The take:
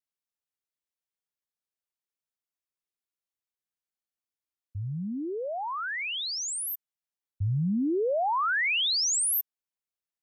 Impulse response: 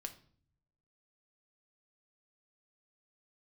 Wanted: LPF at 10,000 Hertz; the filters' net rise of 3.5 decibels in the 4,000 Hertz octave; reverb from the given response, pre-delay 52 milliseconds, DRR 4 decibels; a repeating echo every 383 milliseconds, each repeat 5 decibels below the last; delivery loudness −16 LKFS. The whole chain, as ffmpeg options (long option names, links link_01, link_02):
-filter_complex "[0:a]lowpass=10000,equalizer=frequency=4000:width_type=o:gain=4.5,aecho=1:1:383|766|1149|1532|1915|2298|2681:0.562|0.315|0.176|0.0988|0.0553|0.031|0.0173,asplit=2[link_01][link_02];[1:a]atrim=start_sample=2205,adelay=52[link_03];[link_02][link_03]afir=irnorm=-1:irlink=0,volume=-1dB[link_04];[link_01][link_04]amix=inputs=2:normalize=0,volume=8dB"